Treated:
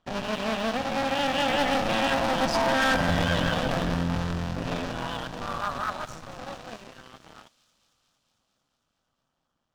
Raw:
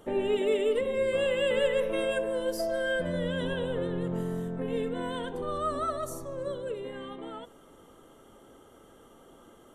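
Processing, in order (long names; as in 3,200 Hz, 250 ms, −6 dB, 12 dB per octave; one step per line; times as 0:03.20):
sub-harmonics by changed cycles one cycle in 2, muted
source passing by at 0:02.91, 8 m/s, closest 6.3 metres
low-pass filter 6,100 Hz 24 dB per octave
parametric band 400 Hz −14 dB 0.81 octaves
notch filter 2,100 Hz, Q 11
spring reverb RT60 3.6 s, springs 41/53 ms, chirp 75 ms, DRR 14.5 dB
leveller curve on the samples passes 3
on a send: delay with a high-pass on its return 226 ms, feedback 74%, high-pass 4,500 Hz, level −12 dB
on the sum: level +5.5 dB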